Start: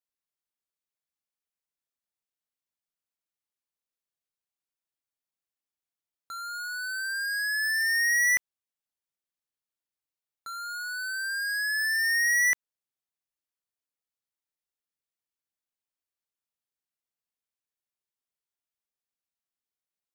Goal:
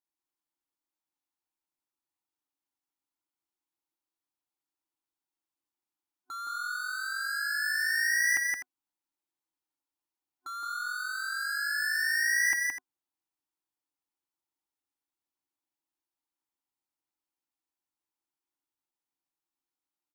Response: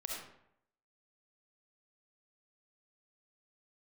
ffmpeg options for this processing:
-filter_complex "[0:a]asplit=2[link_01][link_02];[link_02]asetrate=37084,aresample=44100,atempo=1.18921,volume=-12dB[link_03];[link_01][link_03]amix=inputs=2:normalize=0,superequalizer=6b=3.98:9b=2.82:10b=1.58,aecho=1:1:169.1|250.7:0.708|0.251,volume=-5dB"

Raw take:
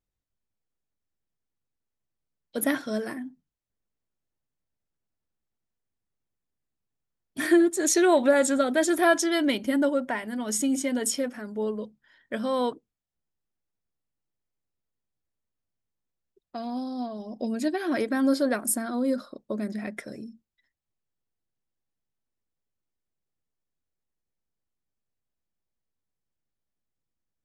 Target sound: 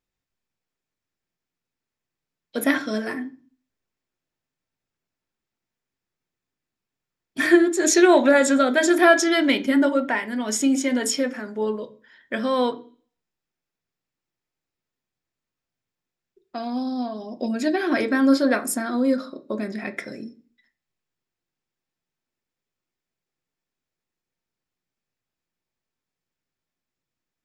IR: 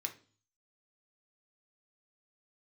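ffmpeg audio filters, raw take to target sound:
-filter_complex "[0:a]asplit=2[link_01][link_02];[1:a]atrim=start_sample=2205,lowpass=6200[link_03];[link_02][link_03]afir=irnorm=-1:irlink=0,volume=3.5dB[link_04];[link_01][link_04]amix=inputs=2:normalize=0"

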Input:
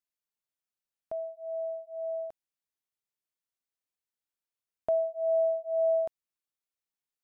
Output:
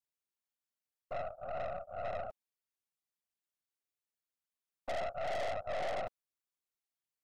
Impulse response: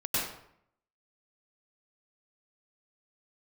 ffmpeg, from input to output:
-af "afftfilt=real='hypot(re,im)*cos(2*PI*random(0))':imag='hypot(re,im)*sin(2*PI*random(1))':win_size=512:overlap=0.75,aeval=exprs='(tanh(126*val(0)+0.75)-tanh(0.75))/126':channel_layout=same,volume=7dB"

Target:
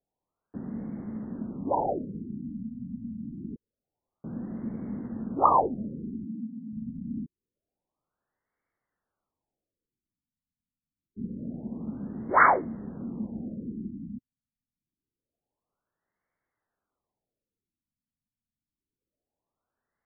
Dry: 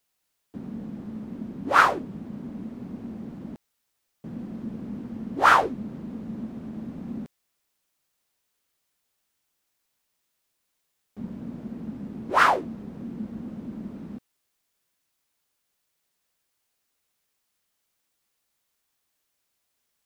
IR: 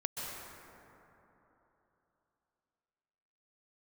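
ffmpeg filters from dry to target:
-filter_complex "[0:a]asettb=1/sr,asplit=3[link_01][link_02][link_03];[link_01]atrim=end=6.254[link_04];[link_02]atrim=start=6.25:end=6.73,asetpts=PTS-STARTPTS,afade=type=in:duration=0.004:curve=qsin,afade=type=out:start_time=0.476:duration=0.004:curve=qsin,highpass=frequency=190:width=0.5412,highpass=frequency=190:width=1.3066[link_05];[link_03]atrim=start=6.726[link_06];[link_04][link_05]acrossfade=duration=0.004:curve1=hsin:curve2=qsin[link_07];[link_07][link_06]acrossfade=duration=0.004:curve1=qsin:curve2=hsin,afftfilt=real='re*lt(b*sr/1024,260*pow(2300/260,0.5+0.5*sin(2*PI*0.26*pts/sr)))':imag='im*lt(b*sr/1024,260*pow(2300/260,0.5+0.5*sin(2*PI*0.26*pts/sr)))':win_size=1024:overlap=0.75"

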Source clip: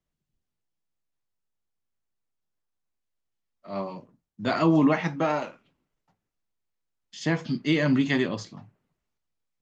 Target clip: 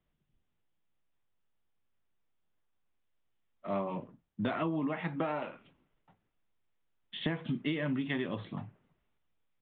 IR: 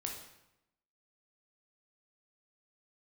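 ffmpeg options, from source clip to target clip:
-af "acompressor=threshold=-34dB:ratio=16,aresample=8000,aresample=44100,volume=4.5dB"

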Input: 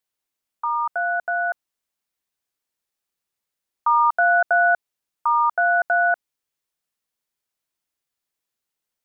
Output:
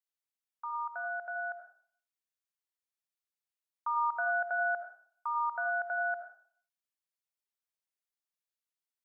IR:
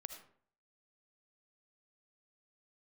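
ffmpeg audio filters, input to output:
-filter_complex "[0:a]lowshelf=frequency=490:gain=-12[link_01];[1:a]atrim=start_sample=2205[link_02];[link_01][link_02]afir=irnorm=-1:irlink=0,volume=-7.5dB"

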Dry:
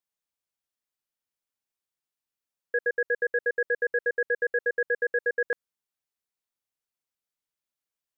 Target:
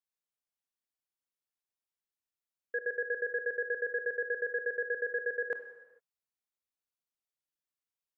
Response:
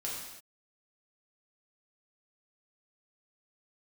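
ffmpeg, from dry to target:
-filter_complex "[0:a]asplit=2[link_01][link_02];[1:a]atrim=start_sample=2205,asetrate=34839,aresample=44100,adelay=26[link_03];[link_02][link_03]afir=irnorm=-1:irlink=0,volume=-13.5dB[link_04];[link_01][link_04]amix=inputs=2:normalize=0,volume=-7.5dB"

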